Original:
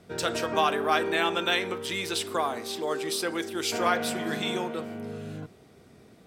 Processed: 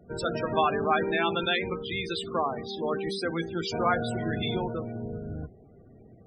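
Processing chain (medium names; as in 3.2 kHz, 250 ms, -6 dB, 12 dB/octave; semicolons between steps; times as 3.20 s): octave divider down 1 oct, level -1 dB; loudest bins only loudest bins 32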